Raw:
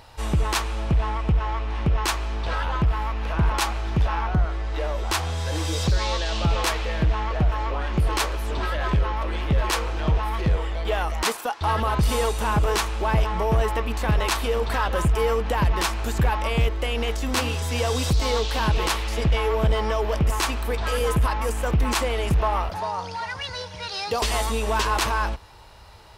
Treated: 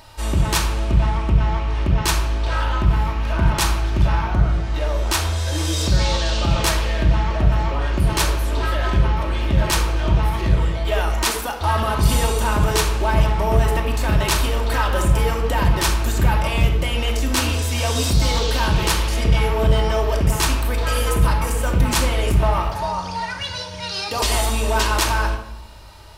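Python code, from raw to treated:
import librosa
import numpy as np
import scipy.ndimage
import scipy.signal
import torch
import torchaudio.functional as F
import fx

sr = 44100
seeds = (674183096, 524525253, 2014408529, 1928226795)

y = fx.high_shelf(x, sr, hz=4800.0, db=7.0)
y = fx.room_shoebox(y, sr, seeds[0], volume_m3=2400.0, walls='furnished', distance_m=2.7)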